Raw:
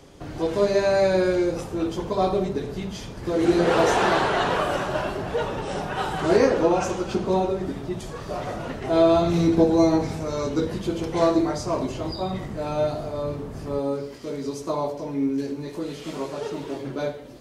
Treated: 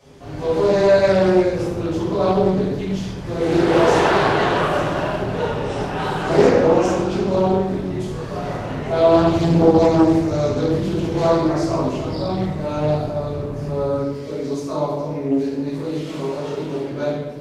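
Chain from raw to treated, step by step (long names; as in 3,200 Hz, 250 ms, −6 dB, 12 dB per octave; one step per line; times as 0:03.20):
high-pass filter 49 Hz
rectangular room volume 380 cubic metres, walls mixed, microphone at 5.7 metres
highs frequency-modulated by the lows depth 0.4 ms
level −9.5 dB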